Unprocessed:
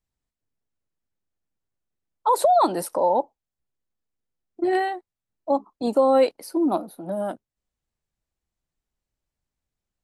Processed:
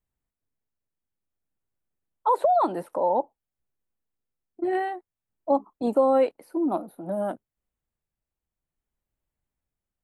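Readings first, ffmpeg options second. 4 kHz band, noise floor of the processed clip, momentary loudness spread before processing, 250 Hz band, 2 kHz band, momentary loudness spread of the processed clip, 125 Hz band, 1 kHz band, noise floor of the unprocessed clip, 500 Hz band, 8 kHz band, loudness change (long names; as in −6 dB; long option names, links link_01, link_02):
below −10 dB, below −85 dBFS, 14 LU, −2.5 dB, −5.0 dB, 12 LU, can't be measured, −3.0 dB, below −85 dBFS, −2.5 dB, below −15 dB, −2.5 dB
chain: -filter_complex "[0:a]equalizer=frequency=5000:width=1.2:gain=-12,acrossover=split=4000[link_01][link_02];[link_02]acompressor=threshold=-52dB:ratio=4:attack=1:release=60[link_03];[link_01][link_03]amix=inputs=2:normalize=0,tremolo=f=0.54:d=0.36"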